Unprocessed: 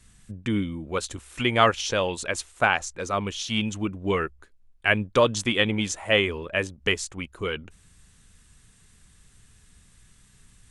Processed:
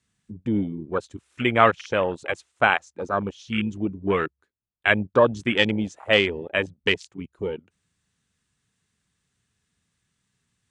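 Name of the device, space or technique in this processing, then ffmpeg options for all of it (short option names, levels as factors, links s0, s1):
over-cleaned archive recording: -af "highpass=110,lowpass=7300,afwtdn=0.0398,volume=1.33"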